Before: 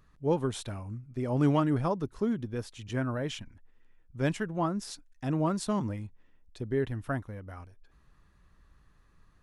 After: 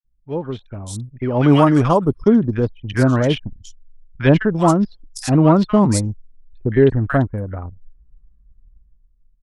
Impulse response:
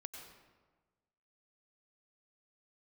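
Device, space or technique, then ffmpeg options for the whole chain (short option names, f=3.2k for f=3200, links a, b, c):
voice memo with heavy noise removal: -filter_complex "[0:a]asplit=3[a][b][c];[a]afade=t=out:st=1.12:d=0.02[d];[b]tiltshelf=f=800:g=-3.5,afade=t=in:st=1.12:d=0.02,afade=t=out:st=1.96:d=0.02[e];[c]afade=t=in:st=1.96:d=0.02[f];[d][e][f]amix=inputs=3:normalize=0,acrossover=split=1300|4200[g][h][i];[g]adelay=50[j];[i]adelay=340[k];[j][h][k]amix=inputs=3:normalize=0,anlmdn=0.1,dynaudnorm=f=170:g=13:m=15.5dB,volume=2dB"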